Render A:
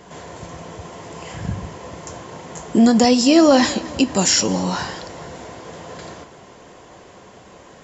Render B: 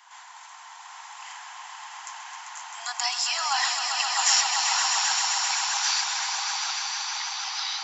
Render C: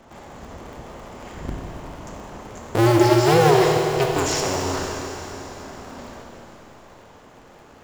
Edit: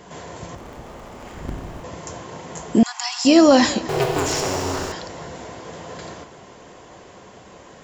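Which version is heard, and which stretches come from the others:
A
0.55–1.84 from C
2.83–3.25 from B
3.89–4.92 from C

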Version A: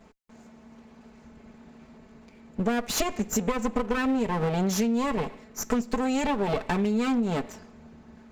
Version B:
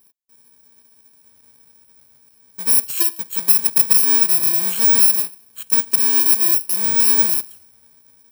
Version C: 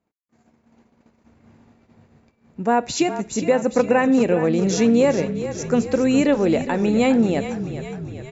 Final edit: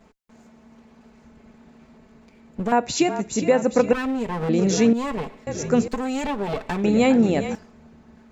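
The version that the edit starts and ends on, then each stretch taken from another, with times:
A
2.72–3.93 from C
4.49–4.93 from C
5.47–5.88 from C
6.84–7.55 from C
not used: B

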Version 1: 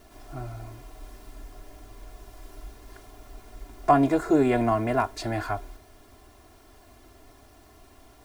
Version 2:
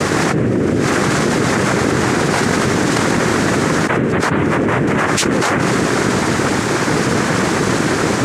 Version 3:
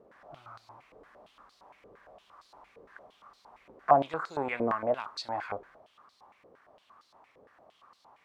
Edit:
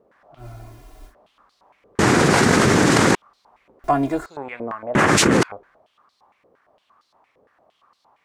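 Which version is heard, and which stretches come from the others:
3
0.41–1.1 from 1, crossfade 0.10 s
1.99–3.15 from 2
3.84–4.26 from 1
4.95–5.43 from 2

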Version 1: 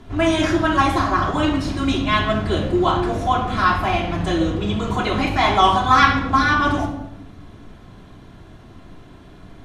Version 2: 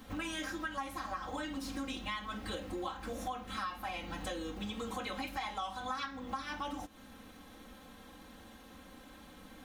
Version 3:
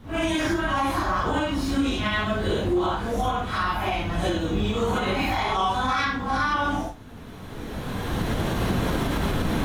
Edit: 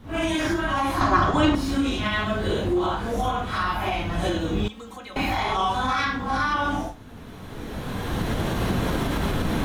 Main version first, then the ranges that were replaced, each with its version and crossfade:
3
1.01–1.55 from 1
4.68–5.16 from 2

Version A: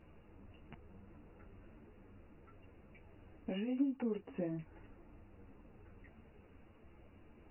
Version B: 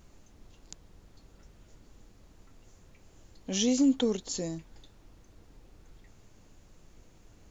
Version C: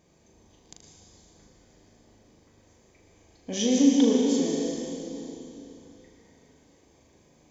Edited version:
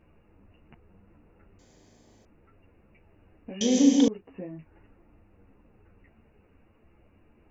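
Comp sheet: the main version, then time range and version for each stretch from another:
A
1.59–2.25 from C
3.61–4.08 from C
not used: B

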